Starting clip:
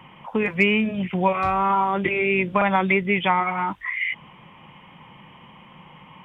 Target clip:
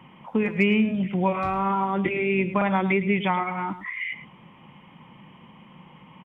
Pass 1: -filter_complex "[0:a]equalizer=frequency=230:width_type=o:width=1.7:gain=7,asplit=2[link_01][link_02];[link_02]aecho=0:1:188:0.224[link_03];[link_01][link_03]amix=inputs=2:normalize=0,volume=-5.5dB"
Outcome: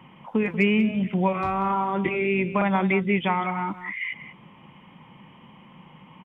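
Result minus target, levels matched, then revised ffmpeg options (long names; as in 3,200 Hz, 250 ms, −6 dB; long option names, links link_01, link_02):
echo 80 ms late
-filter_complex "[0:a]equalizer=frequency=230:width_type=o:width=1.7:gain=7,asplit=2[link_01][link_02];[link_02]aecho=0:1:108:0.224[link_03];[link_01][link_03]amix=inputs=2:normalize=0,volume=-5.5dB"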